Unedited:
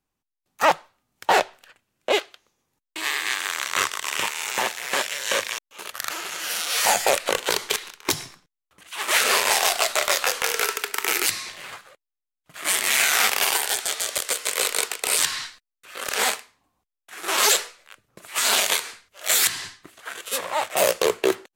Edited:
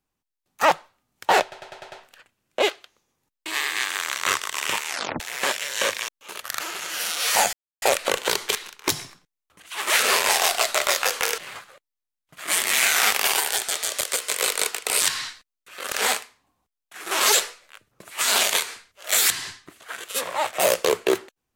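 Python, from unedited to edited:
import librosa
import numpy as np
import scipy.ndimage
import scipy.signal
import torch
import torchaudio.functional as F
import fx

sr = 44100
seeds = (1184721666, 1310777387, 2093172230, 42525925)

y = fx.edit(x, sr, fx.stutter(start_s=1.42, slice_s=0.1, count=6),
    fx.tape_stop(start_s=4.37, length_s=0.33),
    fx.insert_silence(at_s=7.03, length_s=0.29),
    fx.cut(start_s=10.59, length_s=0.96), tone=tone)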